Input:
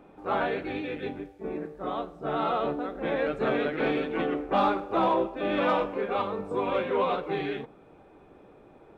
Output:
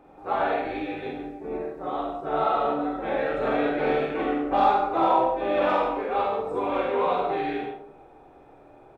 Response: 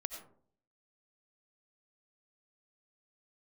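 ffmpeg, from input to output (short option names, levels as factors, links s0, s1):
-filter_complex "[0:a]equalizer=f=200:t=o:w=0.33:g=-10,equalizer=f=800:t=o:w=0.33:g=7,equalizer=f=3150:t=o:w=0.33:g=-3,aecho=1:1:45|72:0.708|0.531[s0];[1:a]atrim=start_sample=2205[s1];[s0][s1]afir=irnorm=-1:irlink=0"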